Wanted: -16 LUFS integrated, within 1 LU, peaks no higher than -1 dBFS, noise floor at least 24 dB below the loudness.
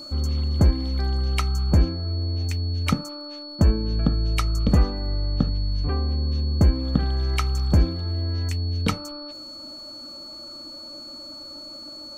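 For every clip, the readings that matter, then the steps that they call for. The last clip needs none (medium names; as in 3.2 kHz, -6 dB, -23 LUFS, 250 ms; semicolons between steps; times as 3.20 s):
tick rate 32 per s; steady tone 4.4 kHz; tone level -37 dBFS; loudness -24.0 LUFS; peak level -6.5 dBFS; loudness target -16.0 LUFS
-> de-click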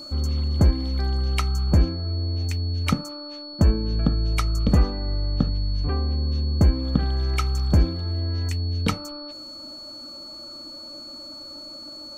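tick rate 0.082 per s; steady tone 4.4 kHz; tone level -37 dBFS
-> band-stop 4.4 kHz, Q 30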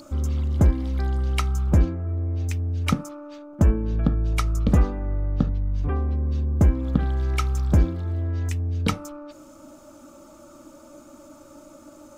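steady tone not found; loudness -24.0 LUFS; peak level -7.0 dBFS; loudness target -16.0 LUFS
-> trim +8 dB; peak limiter -1 dBFS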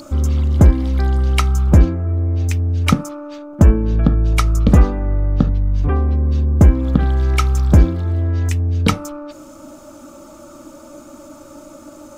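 loudness -16.0 LUFS; peak level -1.0 dBFS; noise floor -40 dBFS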